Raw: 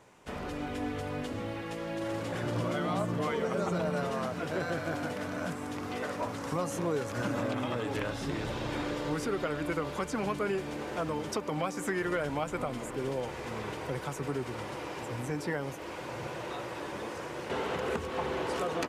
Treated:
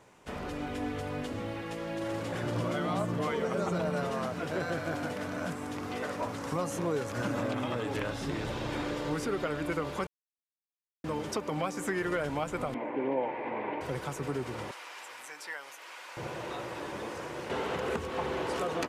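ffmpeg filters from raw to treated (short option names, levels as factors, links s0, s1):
-filter_complex "[0:a]asettb=1/sr,asplit=3[s0][s1][s2];[s0]atrim=end=12.744[s3];[s1]atrim=start=12.74:end=13.81,asetpts=PTS-STARTPTS,afade=t=in:d=0.004:c=qsin,afade=t=out:st=1.066:d=0.004:c=qsin,highpass=240,equalizer=f=280:t=q:w=4:g=9,equalizer=f=590:t=q:w=4:g=6,equalizer=f=890:t=q:w=4:g=10,equalizer=f=1300:t=q:w=4:g=-8,equalizer=f=2200:t=q:w=4:g=6,lowpass=f=2500:w=0.5412,lowpass=f=2500:w=1.3066[s4];[s2]atrim=start=13.806[s5];[s3][s4]acrossfade=d=0.004:c1=hsin:c2=qsin[s6];[s6][s5]acrossfade=d=0.004:c1=qsin:c2=hsin,asettb=1/sr,asplit=3[s7][s8][s9];[s7]atrim=end=14.714[s10];[s8]atrim=start=14.71:end=16.17,asetpts=PTS-STARTPTS,afade=t=in:d=0.004:c=qsin,afade=t=out:st=1.456:d=0.004:c=qsin,highpass=1200[s11];[s9]atrim=start=16.166[s12];[s10][s11]acrossfade=d=0.004:c1=hsin:c2=qsin[s13];[s13][s12]acrossfade=d=0.004:c1=qsin:c2=hsin,asplit=3[s14][s15][s16];[s14]atrim=end=10.07,asetpts=PTS-STARTPTS,afade=t=out:st=10.066:d=0.004:c=hsin[s17];[s15]atrim=start=10.07:end=11.04,asetpts=PTS-STARTPTS,volume=0[s18];[s16]atrim=start=11.04,asetpts=PTS-STARTPTS,afade=t=in:d=0.004:c=hsin[s19];[s17][s18][s19]concat=n=3:v=0:a=1"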